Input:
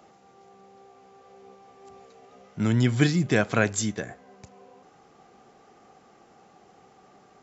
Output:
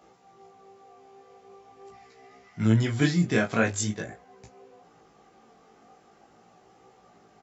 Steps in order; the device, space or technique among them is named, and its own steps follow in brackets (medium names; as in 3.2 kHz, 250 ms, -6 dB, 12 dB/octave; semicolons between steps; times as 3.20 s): 1.92–2.63 s: graphic EQ with 31 bands 500 Hz -10 dB, 2 kHz +11 dB, 5 kHz +6 dB; double-tracked vocal (doubling 18 ms -4.5 dB; chorus 0.44 Hz, delay 15.5 ms, depth 7.2 ms)